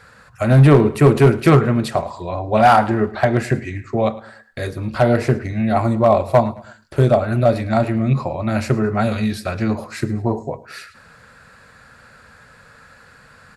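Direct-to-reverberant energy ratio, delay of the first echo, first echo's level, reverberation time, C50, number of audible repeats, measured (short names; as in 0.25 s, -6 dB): none, 0.108 s, -20.0 dB, none, none, 3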